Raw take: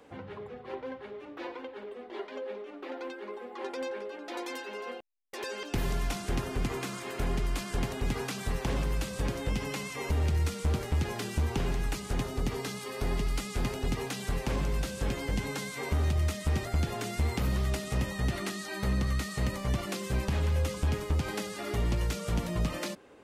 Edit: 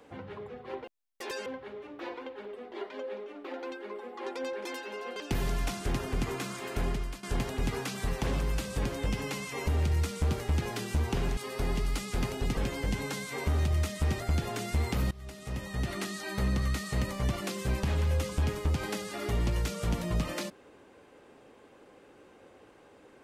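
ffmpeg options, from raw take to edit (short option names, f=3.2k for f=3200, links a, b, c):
-filter_complex "[0:a]asplit=9[a][b][c][d][e][f][g][h][i];[a]atrim=end=0.842[j];[b]atrim=start=4.968:end=5.592[k];[c]atrim=start=0.838:end=4.032[l];[d]atrim=start=4.458:end=4.972[m];[e]atrim=start=5.588:end=7.66,asetpts=PTS-STARTPTS,afade=t=out:st=1.702:d=0.37:silence=0.177828[n];[f]atrim=start=7.66:end=11.802,asetpts=PTS-STARTPTS,afade=t=in:d=0.004:c=hsin:silence=0.177828[o];[g]atrim=start=12.788:end=13.992[p];[h]atrim=start=15.018:end=17.56,asetpts=PTS-STARTPTS,afade=t=out:st=2.538:d=0.004:c=hsin:silence=0.0668344[q];[i]atrim=start=17.56,asetpts=PTS-STARTPTS,afade=t=in:d=0.96:silence=0.0668344[r];[j][k]acrossfade=d=0.004:c1=hsin:c2=hsin[s];[s][l]acrossfade=d=0.004:c1=hsin:c2=hsin[t];[t][m]acrossfade=d=0.004:c1=hsin:c2=hsin[u];[n][o]concat=n=2:v=0:a=1[v];[u][v]acrossfade=d=0.004:c1=hsin:c2=hsin[w];[w][p]acrossfade=d=0.004:c1=hsin:c2=hsin[x];[q][r]concat=n=2:v=0:a=1[y];[x][y]acrossfade=d=0.004:c1=hsin:c2=hsin"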